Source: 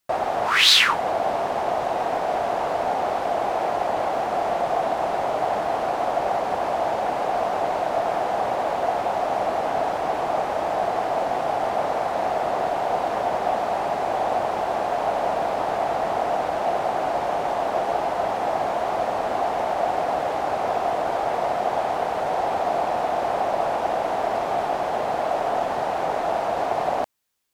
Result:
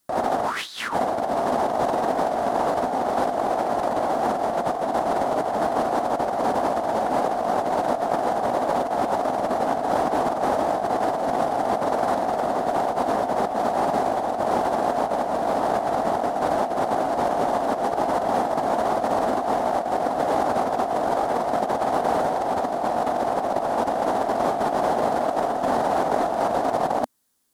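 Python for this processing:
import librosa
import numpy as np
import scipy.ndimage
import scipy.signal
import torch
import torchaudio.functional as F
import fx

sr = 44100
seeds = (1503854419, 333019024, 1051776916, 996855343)

y = fx.graphic_eq_15(x, sr, hz=(250, 2500, 10000), db=(9, -8, 5))
y = fx.over_compress(y, sr, threshold_db=-25.0, ratio=-0.5)
y = F.gain(torch.from_numpy(y), 2.5).numpy()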